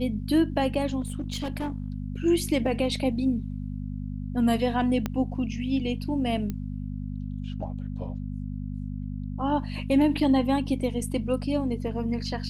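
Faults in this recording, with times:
hum 50 Hz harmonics 5 -33 dBFS
1.00–1.88 s: clipped -26 dBFS
5.06 s: pop -14 dBFS
6.50 s: pop -19 dBFS

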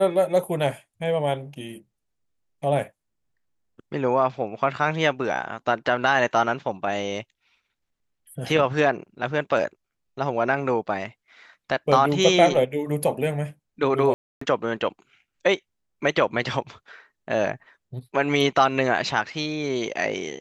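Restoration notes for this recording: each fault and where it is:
14.14–14.41 s: dropout 274 ms

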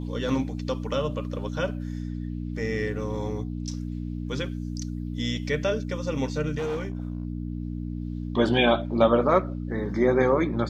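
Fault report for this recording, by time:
hum 60 Hz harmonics 5 -32 dBFS
6.57–7.25 s: clipped -25.5 dBFS

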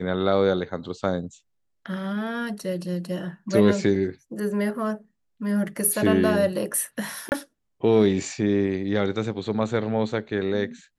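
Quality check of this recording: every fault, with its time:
3.95 s: dropout 4.6 ms
7.29–7.32 s: dropout 29 ms

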